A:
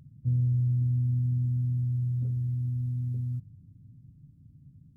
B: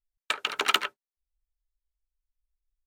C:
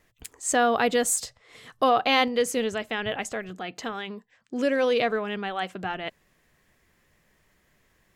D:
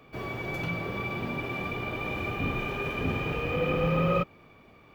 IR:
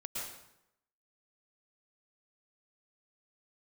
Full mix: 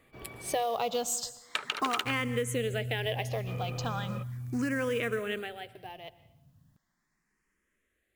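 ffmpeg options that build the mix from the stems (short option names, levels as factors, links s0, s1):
-filter_complex "[0:a]crystalizer=i=7:c=0,adelay=1800,volume=0.355[s0];[1:a]adelay=1250,volume=0.944[s1];[2:a]lowshelf=f=130:g=-3,acrusher=bits=5:mode=log:mix=0:aa=0.000001,asplit=2[s2][s3];[s3]afreqshift=0.37[s4];[s2][s4]amix=inputs=2:normalize=1,afade=t=out:st=5.33:d=0.21:silence=0.281838,asplit=2[s5][s6];[s6]volume=0.168[s7];[3:a]acompressor=threshold=0.0447:ratio=6,volume=0.251,asplit=3[s8][s9][s10];[s8]atrim=end=0.63,asetpts=PTS-STARTPTS,afade=t=out:st=0.626:d=0.004:c=hsin[s11];[s9]atrim=start=0.63:end=3.47,asetpts=PTS-STARTPTS,volume=0[s12];[s10]atrim=start=3.47,asetpts=PTS-STARTPTS,afade=t=in:d=0.004:c=hsin[s13];[s11][s12][s13]concat=n=3:v=0:a=1[s14];[4:a]atrim=start_sample=2205[s15];[s7][s15]afir=irnorm=-1:irlink=0[s16];[s0][s1][s5][s14][s16]amix=inputs=5:normalize=0,acompressor=threshold=0.0447:ratio=6"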